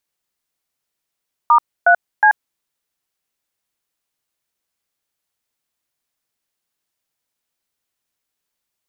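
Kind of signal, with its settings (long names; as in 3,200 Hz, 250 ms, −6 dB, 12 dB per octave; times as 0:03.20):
touch tones "*3C", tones 84 ms, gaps 280 ms, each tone −10 dBFS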